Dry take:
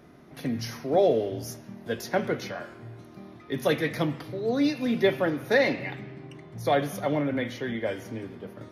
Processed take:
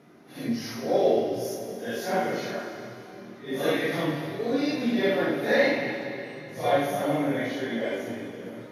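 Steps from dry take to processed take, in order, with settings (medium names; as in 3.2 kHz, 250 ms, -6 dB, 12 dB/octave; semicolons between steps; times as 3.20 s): phase randomisation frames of 200 ms; high-pass 170 Hz 12 dB/octave; plate-style reverb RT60 3 s, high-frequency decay 0.95×, DRR 4 dB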